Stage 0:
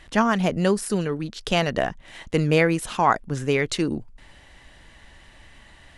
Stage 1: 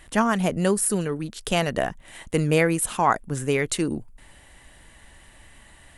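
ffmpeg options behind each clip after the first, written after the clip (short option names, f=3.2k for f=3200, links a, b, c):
-af "highshelf=f=7k:t=q:w=1.5:g=9,volume=-1dB"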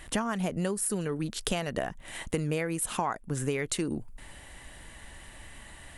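-af "acompressor=threshold=-29dB:ratio=10,volume=2.5dB"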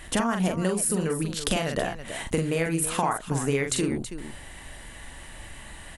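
-af "aecho=1:1:43|326:0.596|0.282,volume=3.5dB"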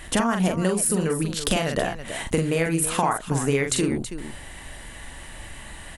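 -af "aeval=exprs='clip(val(0),-1,0.237)':c=same,volume=3dB"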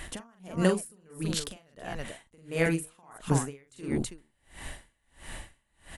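-af "aeval=exprs='val(0)*pow(10,-37*(0.5-0.5*cos(2*PI*1.5*n/s))/20)':c=same"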